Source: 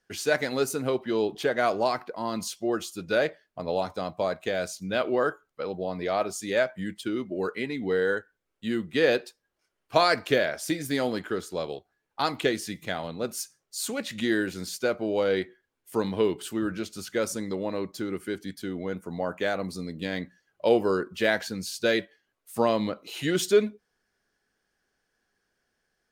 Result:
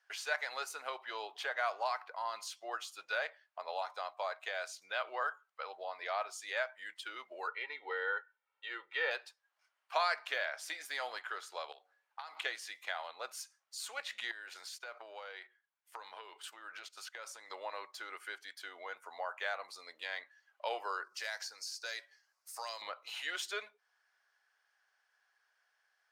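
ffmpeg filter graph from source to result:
-filter_complex "[0:a]asettb=1/sr,asplit=3[s0][s1][s2];[s0]atrim=end=7.474[s3];[s1]atrim=start=7.47:end=9.11,asetpts=PTS-STARTPTS,afade=t=in:d=0.004:c=qsin,afade=t=out:st=1.636:d=0.004:c=qsin,lowpass=3200,bandreject=f=1700:w=28,aecho=1:1:2.2:0.8,atrim=end_sample=72324[s4];[s2]atrim=start=9.106[s5];[s3][s4]acrossfade=d=0.004:c1=hsin:c2=qsin[s6];[s6][s5]acrossfade=d=0.004:c1=qsin:c2=hsin,asettb=1/sr,asplit=3[s7][s8][s9];[s7]atrim=end=11.724[s10];[s8]atrim=start=11.72:end=12.37,asetpts=PTS-STARTPTS,afade=t=in:d=0.004:c=qsin,afade=t=out:st=0.646:d=0.004:c=qsin,acompressor=threshold=0.0112:ratio=12:attack=3.2:release=140:knee=1:detection=peak,bandreject=f=93.26:t=h:w=4,bandreject=f=186.52:t=h:w=4,bandreject=f=279.78:t=h:w=4,bandreject=f=373.04:t=h:w=4,bandreject=f=466.3:t=h:w=4,bandreject=f=559.56:t=h:w=4,bandreject=f=652.82:t=h:w=4,bandreject=f=746.08:t=h:w=4,bandreject=f=839.34:t=h:w=4[s11];[s9]atrim=start=12.366[s12];[s10][s11]acrossfade=d=0.004:c1=hsin:c2=qsin[s13];[s13][s12]acrossfade=d=0.004:c1=qsin:c2=hsin,asettb=1/sr,asplit=3[s14][s15][s16];[s14]atrim=end=14.314[s17];[s15]atrim=start=14.31:end=17.5,asetpts=PTS-STARTPTS,afade=t=in:d=0.004:c=qsin,afade=t=out:st=3.186:d=0.004:c=qsin,agate=range=0.316:threshold=0.00891:ratio=16:release=100:detection=peak,acompressor=threshold=0.02:ratio=10:attack=3.2:release=140:knee=1:detection=peak[s18];[s16]atrim=start=17.496[s19];[s17][s18]acrossfade=d=0.004:c1=hsin:c2=qsin[s20];[s20][s19]acrossfade=d=0.004:c1=qsin:c2=hsin,asettb=1/sr,asplit=3[s21][s22][s23];[s21]atrim=end=21.044[s24];[s22]atrim=start=21.04:end=22.82,asetpts=PTS-STARTPTS,afade=t=in:d=0.004:c=qsin,afade=t=out:st=1.776:d=0.004:c=qsin,highshelf=f=4100:t=q:w=3:g=7.5,acrossover=split=420|2100[s25][s26][s27];[s25]acompressor=threshold=0.00891:ratio=4[s28];[s26]acompressor=threshold=0.0141:ratio=4[s29];[s27]acompressor=threshold=0.0224:ratio=4[s30];[s28][s29][s30]amix=inputs=3:normalize=0[s31];[s23]atrim=start=22.816[s32];[s24][s31]acrossfade=d=0.004:c1=hsin:c2=qsin[s33];[s33][s32]acrossfade=d=0.004:c1=qsin:c2=hsin,highpass=f=800:w=0.5412,highpass=f=800:w=1.3066,acompressor=threshold=0.00355:ratio=1.5,lowpass=f=2800:p=1,volume=1.5"

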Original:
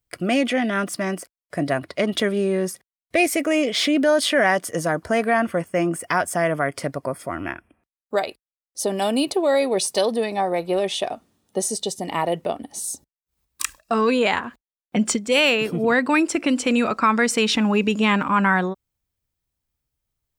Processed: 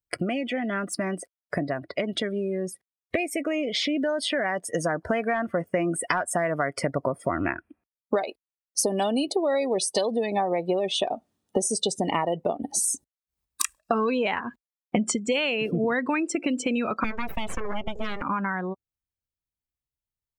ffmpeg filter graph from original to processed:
-filter_complex "[0:a]asettb=1/sr,asplit=3[s0][s1][s2];[s0]atrim=end=4.644[s3];[s1]atrim=start=4.64:end=6.93,asetpts=PTS-STARTPTS,afade=t=in:d=0.004:c=qsin,afade=t=out:st=2.286:d=0.004:c=qsin,lowshelf=f=460:g=-3,volume=3.98,asoftclip=hard,volume=0.251[s4];[s2]atrim=start=6.926[s5];[s3][s4]acrossfade=d=0.004:c1=hsin:c2=qsin[s6];[s6][s5]acrossfade=d=0.004:c1=qsin:c2=hsin,asettb=1/sr,asplit=3[s7][s8][s9];[s7]atrim=end=17.044[s10];[s8]atrim=start=17.04:end=18.22,asetpts=PTS-STARTPTS,afade=t=in:d=0.004:c=qsin,afade=t=out:st=1.176:d=0.004:c=qsin,highpass=f=240:w=0.5412,highpass=f=240:w=1.3066,equalizer=f=2800:t=o:w=1.9:g=-5,aeval=exprs='abs(val(0))':c=same[s11];[s9]atrim=start=18.216[s12];[s10][s11]acrossfade=d=0.004:c1=hsin:c2=qsin[s13];[s13][s12]acrossfade=d=0.004:c1=qsin:c2=hsin,acompressor=threshold=0.0251:ratio=20,afftdn=nr=21:nf=-44,dynaudnorm=f=940:g=9:m=1.5,volume=2.37"

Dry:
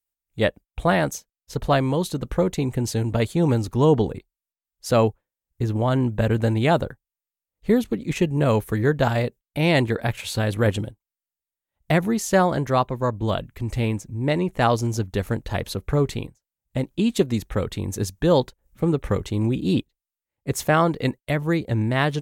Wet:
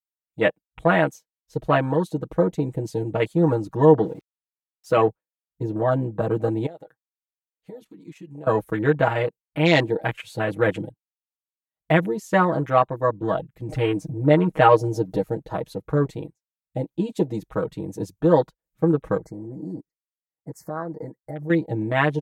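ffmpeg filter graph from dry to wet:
-filter_complex "[0:a]asettb=1/sr,asplit=3[s0][s1][s2];[s0]atrim=end=4.034[s3];[s1]atrim=start=4.03:end=4.97,asetpts=PTS-STARTPTS,afade=t=in:d=0.004:c=qsin,afade=t=out:st=0.936:d=0.004:c=qsin,highpass=f=110:p=1,equalizer=f=770:t=o:w=0.39:g=-9,aeval=exprs='val(0)*gte(abs(val(0)),0.00794)':c=same[s4];[s2]atrim=start=4.966[s5];[s3][s4]acrossfade=d=0.004:c1=hsin:c2=qsin[s6];[s6][s5]acrossfade=d=0.004:c1=qsin:c2=hsin,asettb=1/sr,asplit=3[s7][s8][s9];[s7]atrim=end=6.664[s10];[s8]atrim=start=6.66:end=8.47,asetpts=PTS-STARTPTS,afade=t=in:d=0.004:c=qsin,afade=t=out:st=1.806:d=0.004:c=qsin,lowshelf=f=320:g=-11.5,acompressor=threshold=0.02:ratio=12:attack=3.2:release=140:knee=1:detection=peak[s11];[s9]atrim=start=8.466[s12];[s10][s11]acrossfade=d=0.004:c1=hsin:c2=qsin[s13];[s13][s12]acrossfade=d=0.004:c1=qsin:c2=hsin,asettb=1/sr,asplit=3[s14][s15][s16];[s14]atrim=end=13.694[s17];[s15]atrim=start=13.69:end=15.23,asetpts=PTS-STARTPTS,afade=t=in:d=0.004:c=qsin,afade=t=out:st=1.536:d=0.004:c=qsin,aecho=1:1:6.5:0.87,atrim=end_sample=67914,acompressor=mode=upward:threshold=0.126:ratio=2.5:attack=3.2:release=140:knee=2.83:detection=peak[s18];[s16]atrim=start=15.226[s19];[s17][s18]acrossfade=d=0.004:c1=hsin:c2=qsin[s20];[s20][s19]acrossfade=d=0.004:c1=qsin:c2=hsin,asettb=1/sr,asplit=3[s21][s22][s23];[s21]atrim=end=19.174[s24];[s22]atrim=start=19.17:end=21.5,asetpts=PTS-STARTPTS,afade=t=in:d=0.004:c=qsin,afade=t=out:st=2.326:d=0.004:c=qsin,acompressor=threshold=0.0355:ratio=6:attack=3.2:release=140:knee=1:detection=peak,asuperstop=centerf=3100:order=12:qfactor=1.3[s25];[s23]atrim=start=21.496[s26];[s24][s25]acrossfade=d=0.004:c1=hsin:c2=qsin[s27];[s27][s26]acrossfade=d=0.004:c1=qsin:c2=hsin,afwtdn=0.0282,highpass=f=270:p=1,aecho=1:1:6.3:0.97"

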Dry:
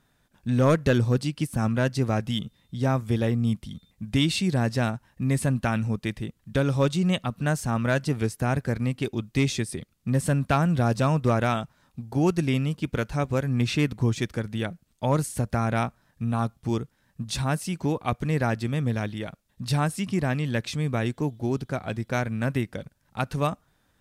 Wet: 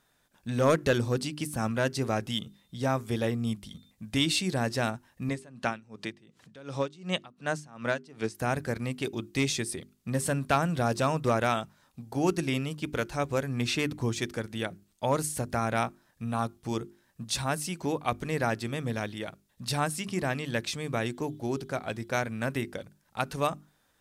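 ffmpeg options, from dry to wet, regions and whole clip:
-filter_complex "[0:a]asettb=1/sr,asplit=3[s0][s1][s2];[s0]atrim=end=5.294[s3];[s1]atrim=start=5.29:end=8.35,asetpts=PTS-STARTPTS,afade=t=in:d=0.004:c=qsin,afade=t=out:st=3.056:d=0.004:c=qsin,acompressor=mode=upward:threshold=0.0447:ratio=2.5:attack=3.2:release=140:knee=2.83:detection=peak,highpass=130,lowpass=6700,aeval=exprs='val(0)*pow(10,-22*(0.5-0.5*cos(2*PI*2.7*n/s))/20)':c=same[s4];[s2]atrim=start=8.346[s5];[s3][s4]acrossfade=d=0.004:c1=hsin:c2=qsin[s6];[s6][s5]acrossfade=d=0.004:c1=qsin:c2=hsin,bass=f=250:g=-7,treble=f=4000:g=3,bandreject=f=50:t=h:w=6,bandreject=f=100:t=h:w=6,bandreject=f=150:t=h:w=6,bandreject=f=200:t=h:w=6,bandreject=f=250:t=h:w=6,bandreject=f=300:t=h:w=6,bandreject=f=350:t=h:w=6,bandreject=f=400:t=h:w=6,volume=0.891"

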